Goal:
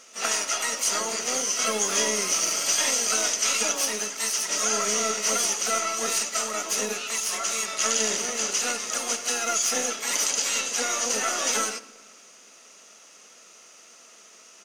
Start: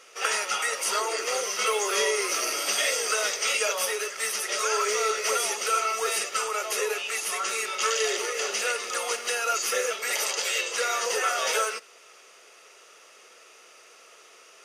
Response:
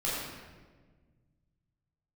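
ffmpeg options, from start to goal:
-filter_complex "[0:a]asplit=3[a][b][c];[b]asetrate=22050,aresample=44100,atempo=2,volume=-6dB[d];[c]asetrate=66075,aresample=44100,atempo=0.66742,volume=-9dB[e];[a][d][e]amix=inputs=3:normalize=0,aeval=exprs='0.398*(cos(1*acos(clip(val(0)/0.398,-1,1)))-cos(1*PI/2))+0.00398*(cos(6*acos(clip(val(0)/0.398,-1,1)))-cos(6*PI/2))':c=same,equalizer=f=6.4k:t=o:w=0.7:g=11.5,asplit=2[f][g];[1:a]atrim=start_sample=2205[h];[g][h]afir=irnorm=-1:irlink=0,volume=-22.5dB[i];[f][i]amix=inputs=2:normalize=0,volume=-4.5dB"

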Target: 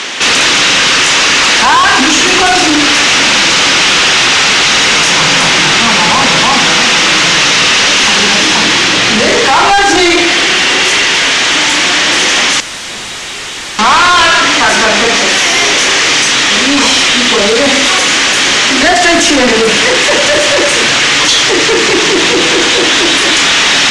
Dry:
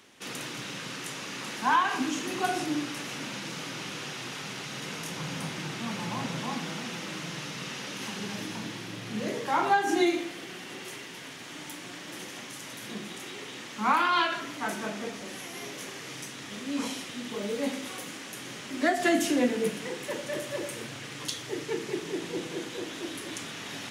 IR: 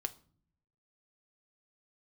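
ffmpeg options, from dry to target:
-filter_complex "[0:a]asplit=2[a][b];[b]highpass=f=720:p=1,volume=34dB,asoftclip=type=tanh:threshold=-12dB[c];[a][c]amix=inputs=2:normalize=0,lowpass=f=2.3k:p=1,volume=-6dB,highshelf=f=2.4k:g=12,acontrast=86,asettb=1/sr,asplit=3[d][e][f];[d]atrim=end=12.604[g];[e]atrim=start=12.6:end=13.79,asetpts=PTS-STARTPTS,afade=t=in:d=0.004:c=qsin,afade=t=out:st=1.186:d=0.004:c=qsin,aeval=exprs='0.119*(abs(mod(val(0)/0.119+3,4)-2)-1)':c=same[h];[f]atrim=start=13.786[i];[g][h]acrossfade=d=0.004:c1=hsin:c2=qsin[j];[j][i]acrossfade=d=0.004:c1=qsin:c2=hsin,lowpass=f=7.9k:w=0.5412,lowpass=f=7.9k:w=1.3066,volume=3dB"

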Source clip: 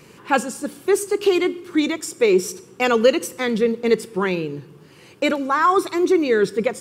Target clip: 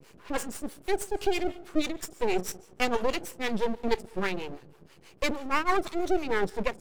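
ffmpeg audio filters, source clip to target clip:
-filter_complex "[0:a]acrossover=split=420[a][b];[a]aeval=exprs='val(0)*(1-1/2+1/2*cos(2*PI*6.2*n/s))':c=same[c];[b]aeval=exprs='val(0)*(1-1/2-1/2*cos(2*PI*6.2*n/s))':c=same[d];[c][d]amix=inputs=2:normalize=0,aeval=exprs='max(val(0),0)':c=same"

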